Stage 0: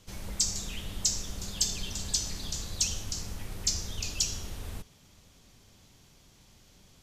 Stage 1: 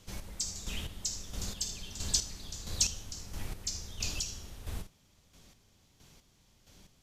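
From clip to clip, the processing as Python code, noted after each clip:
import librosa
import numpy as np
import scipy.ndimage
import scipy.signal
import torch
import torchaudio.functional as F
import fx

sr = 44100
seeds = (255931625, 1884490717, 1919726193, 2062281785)

y = fx.room_early_taps(x, sr, ms=(53, 78), db=(-13.0, -14.0))
y = fx.chopper(y, sr, hz=1.5, depth_pct=60, duty_pct=30)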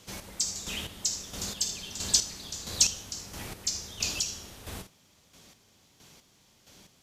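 y = fx.highpass(x, sr, hz=210.0, slope=6)
y = y * librosa.db_to_amplitude(6.0)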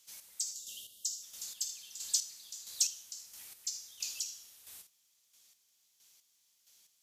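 y = F.preemphasis(torch.from_numpy(x), 0.97).numpy()
y = fx.spec_box(y, sr, start_s=0.53, length_s=0.69, low_hz=700.0, high_hz=2700.0, gain_db=-24)
y = y * librosa.db_to_amplitude(-5.5)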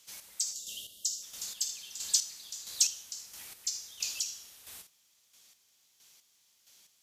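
y = fx.high_shelf(x, sr, hz=4000.0, db=-6.5)
y = y * librosa.db_to_amplitude(8.5)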